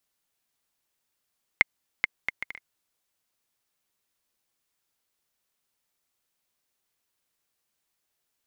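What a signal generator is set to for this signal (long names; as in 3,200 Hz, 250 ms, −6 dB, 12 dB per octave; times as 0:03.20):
bouncing ball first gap 0.43 s, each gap 0.57, 2,120 Hz, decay 20 ms −3 dBFS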